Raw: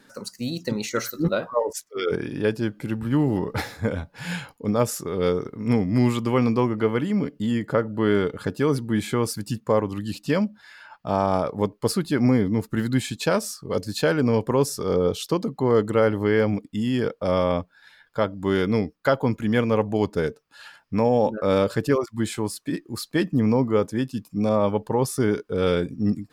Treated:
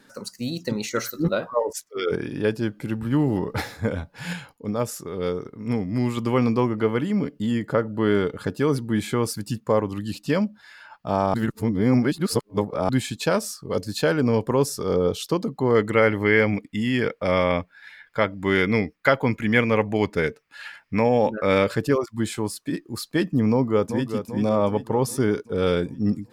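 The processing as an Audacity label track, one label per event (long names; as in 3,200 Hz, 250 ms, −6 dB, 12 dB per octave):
4.330000	6.170000	clip gain −4 dB
11.340000	12.890000	reverse
15.750000	21.760000	parametric band 2,100 Hz +12.5 dB 0.72 octaves
23.500000	24.090000	delay throw 390 ms, feedback 55%, level −8.5 dB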